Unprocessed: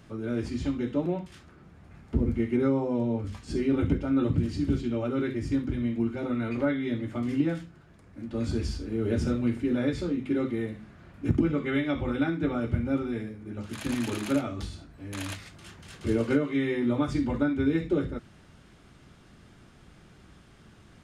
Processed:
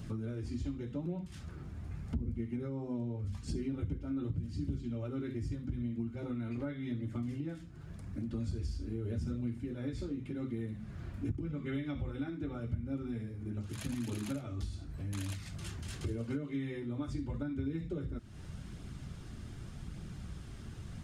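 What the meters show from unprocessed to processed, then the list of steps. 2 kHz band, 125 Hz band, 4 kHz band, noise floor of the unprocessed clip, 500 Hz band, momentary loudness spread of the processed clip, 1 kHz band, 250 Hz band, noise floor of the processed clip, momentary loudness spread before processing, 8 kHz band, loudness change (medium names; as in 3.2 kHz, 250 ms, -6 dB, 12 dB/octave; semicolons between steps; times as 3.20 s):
-14.0 dB, -5.0 dB, -9.5 dB, -55 dBFS, -14.0 dB, 9 LU, -14.0 dB, -11.0 dB, -48 dBFS, 11 LU, -5.5 dB, -11.0 dB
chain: tone controls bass +11 dB, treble +6 dB; compression 4:1, threshold -38 dBFS, peak gain reduction 23.5 dB; flange 0.85 Hz, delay 0.2 ms, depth 3.1 ms, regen -53%; trim +4 dB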